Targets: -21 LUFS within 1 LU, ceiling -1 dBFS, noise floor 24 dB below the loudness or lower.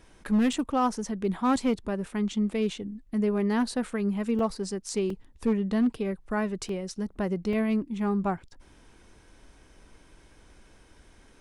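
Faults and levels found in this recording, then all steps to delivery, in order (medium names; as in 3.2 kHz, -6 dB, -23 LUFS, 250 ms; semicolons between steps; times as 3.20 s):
clipped samples 0.6%; clipping level -18.5 dBFS; dropouts 5; longest dropout 2.7 ms; loudness -28.5 LUFS; peak level -18.5 dBFS; loudness target -21.0 LUFS
-> clip repair -18.5 dBFS; interpolate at 0.53/4.39/5.10/6.69/7.53 s, 2.7 ms; trim +7.5 dB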